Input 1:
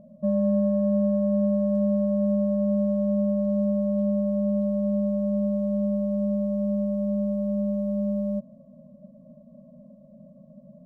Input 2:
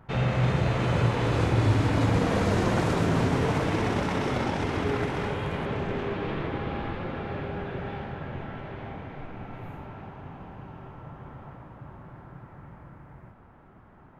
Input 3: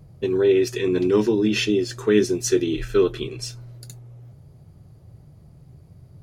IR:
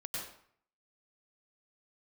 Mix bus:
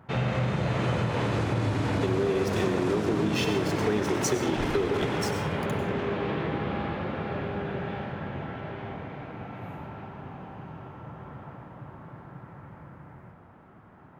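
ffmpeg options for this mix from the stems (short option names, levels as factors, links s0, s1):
-filter_complex "[0:a]volume=0.126[s0];[1:a]highpass=85,alimiter=limit=0.133:level=0:latency=1:release=144,volume=0.891,asplit=2[s1][s2];[s2]volume=0.473[s3];[2:a]acompressor=threshold=0.0891:ratio=2,aeval=exprs='sgn(val(0))*max(abs(val(0))-0.015,0)':c=same,adelay=1800,volume=0.75,asplit=2[s4][s5];[s5]volume=0.668[s6];[3:a]atrim=start_sample=2205[s7];[s3][s6]amix=inputs=2:normalize=0[s8];[s8][s7]afir=irnorm=-1:irlink=0[s9];[s0][s1][s4][s9]amix=inputs=4:normalize=0,acompressor=threshold=0.0794:ratio=6"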